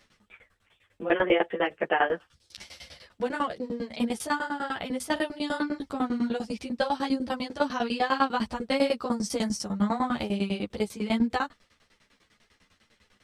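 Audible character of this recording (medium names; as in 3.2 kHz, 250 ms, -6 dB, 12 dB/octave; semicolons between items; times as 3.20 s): tremolo saw down 10 Hz, depth 100%; a shimmering, thickened sound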